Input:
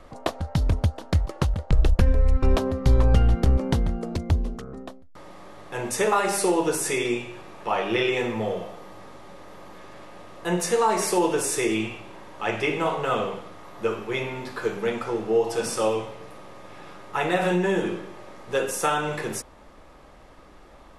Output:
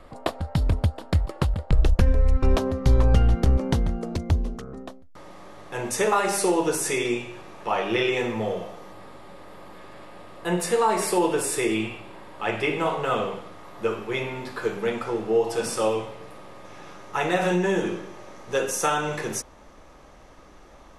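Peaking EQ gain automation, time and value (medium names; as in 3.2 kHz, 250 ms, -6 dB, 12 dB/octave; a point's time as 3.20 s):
peaking EQ 6.1 kHz 0.22 oct
-9.5 dB
from 1.84 s +2 dB
from 8.92 s -9 dB
from 12.78 s -2 dB
from 16.65 s +8.5 dB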